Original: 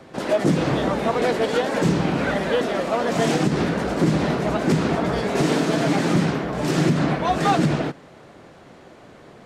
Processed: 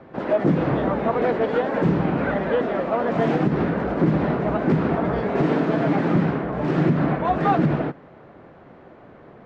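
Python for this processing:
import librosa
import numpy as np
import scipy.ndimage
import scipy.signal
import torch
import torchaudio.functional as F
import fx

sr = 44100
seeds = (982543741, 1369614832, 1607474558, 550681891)

y = scipy.signal.sosfilt(scipy.signal.butter(2, 1800.0, 'lowpass', fs=sr, output='sos'), x)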